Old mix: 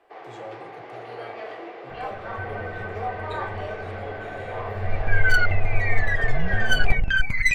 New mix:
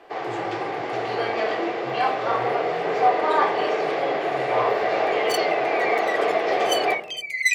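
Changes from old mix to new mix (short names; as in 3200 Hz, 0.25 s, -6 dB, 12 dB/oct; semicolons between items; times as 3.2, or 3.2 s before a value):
first sound +11.5 dB; second sound: add brick-wall FIR high-pass 1900 Hz; master: add tone controls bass +7 dB, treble +8 dB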